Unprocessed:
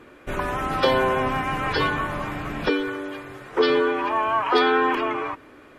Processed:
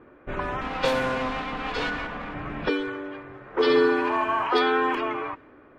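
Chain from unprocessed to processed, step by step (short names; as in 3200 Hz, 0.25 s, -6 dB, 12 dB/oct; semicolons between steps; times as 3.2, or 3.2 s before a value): 0.61–2.34 minimum comb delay 4.1 ms; 3.4–4.47 flutter echo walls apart 11.9 m, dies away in 0.84 s; low-pass opened by the level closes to 1400 Hz, open at -15.5 dBFS; gain -3 dB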